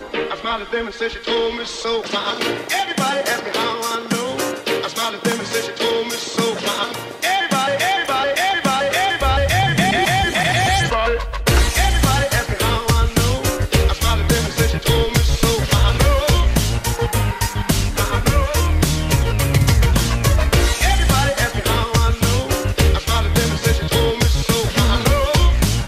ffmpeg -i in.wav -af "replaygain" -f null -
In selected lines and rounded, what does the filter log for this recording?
track_gain = -0.2 dB
track_peak = 0.585